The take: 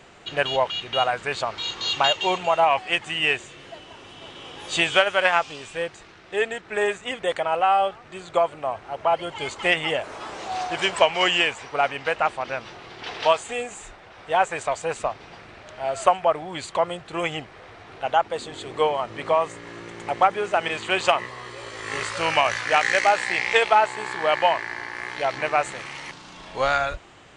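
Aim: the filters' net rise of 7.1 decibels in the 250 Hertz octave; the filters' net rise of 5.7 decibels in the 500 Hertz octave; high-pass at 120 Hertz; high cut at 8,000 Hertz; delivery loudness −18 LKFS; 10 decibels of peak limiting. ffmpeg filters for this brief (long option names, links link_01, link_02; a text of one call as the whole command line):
ffmpeg -i in.wav -af "highpass=120,lowpass=8000,equalizer=frequency=250:width_type=o:gain=8.5,equalizer=frequency=500:width_type=o:gain=5.5,volume=4.5dB,alimiter=limit=-5dB:level=0:latency=1" out.wav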